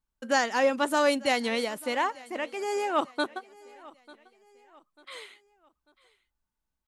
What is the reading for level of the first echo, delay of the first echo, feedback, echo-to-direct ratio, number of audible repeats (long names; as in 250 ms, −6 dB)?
−22.0 dB, 894 ms, 40%, −21.5 dB, 2